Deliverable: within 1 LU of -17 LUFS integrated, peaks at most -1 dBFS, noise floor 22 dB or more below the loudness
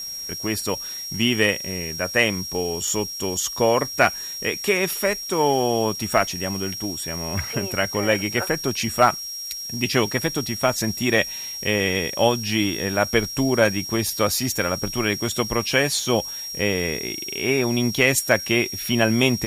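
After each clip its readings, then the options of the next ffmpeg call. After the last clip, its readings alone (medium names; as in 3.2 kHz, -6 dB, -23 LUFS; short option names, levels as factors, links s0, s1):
steady tone 5.6 kHz; tone level -30 dBFS; noise floor -33 dBFS; noise floor target -44 dBFS; loudness -22.0 LUFS; peak level -4.0 dBFS; loudness target -17.0 LUFS
-> -af "bandreject=f=5600:w=30"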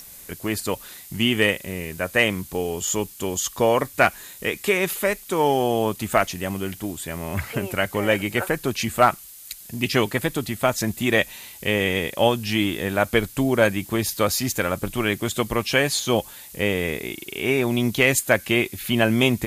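steady tone not found; noise floor -43 dBFS; noise floor target -45 dBFS
-> -af "afftdn=nr=6:nf=-43"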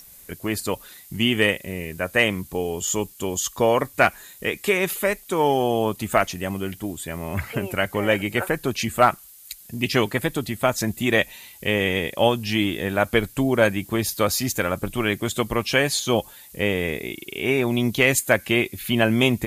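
noise floor -47 dBFS; loudness -23.0 LUFS; peak level -4.0 dBFS; loudness target -17.0 LUFS
-> -af "volume=2,alimiter=limit=0.891:level=0:latency=1"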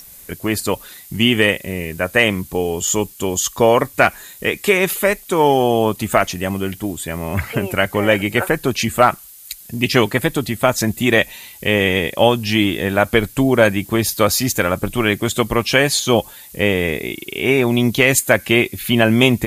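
loudness -17.0 LUFS; peak level -1.0 dBFS; noise floor -41 dBFS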